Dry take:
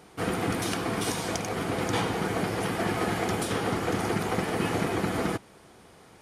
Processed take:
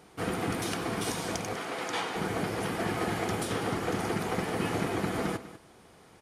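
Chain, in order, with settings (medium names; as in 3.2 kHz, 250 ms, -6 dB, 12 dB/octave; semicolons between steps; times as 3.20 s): 1.56–2.16 s: frequency weighting A; delay 197 ms -15 dB; trim -3 dB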